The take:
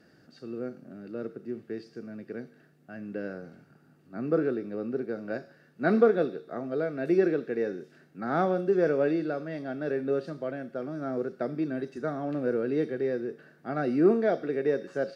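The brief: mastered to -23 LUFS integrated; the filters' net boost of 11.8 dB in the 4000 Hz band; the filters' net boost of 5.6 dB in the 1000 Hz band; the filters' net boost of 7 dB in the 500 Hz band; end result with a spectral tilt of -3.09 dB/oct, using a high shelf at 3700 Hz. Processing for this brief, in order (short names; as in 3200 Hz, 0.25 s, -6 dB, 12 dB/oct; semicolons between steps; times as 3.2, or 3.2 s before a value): bell 500 Hz +7.5 dB; bell 1000 Hz +3.5 dB; high shelf 3700 Hz +9 dB; bell 4000 Hz +8 dB; gain +0.5 dB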